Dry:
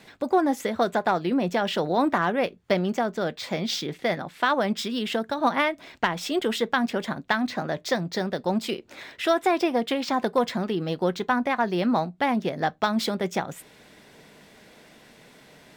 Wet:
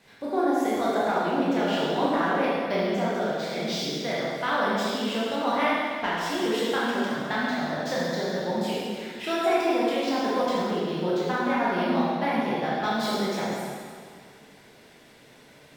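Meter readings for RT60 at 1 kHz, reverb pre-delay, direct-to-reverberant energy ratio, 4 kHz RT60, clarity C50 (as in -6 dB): 2.0 s, 7 ms, -8.0 dB, 1.9 s, -3.0 dB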